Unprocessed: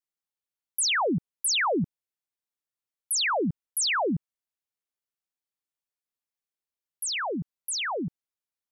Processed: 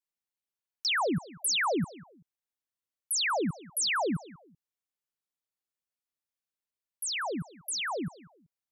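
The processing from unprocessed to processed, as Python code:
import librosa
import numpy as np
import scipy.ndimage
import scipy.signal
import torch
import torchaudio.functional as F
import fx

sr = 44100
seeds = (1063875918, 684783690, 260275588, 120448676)

y = fx.echo_feedback(x, sr, ms=191, feedback_pct=30, wet_db=-20)
y = fx.buffer_glitch(y, sr, at_s=(0.57,), block=2048, repeats=5)
y = F.gain(torch.from_numpy(y), -3.0).numpy()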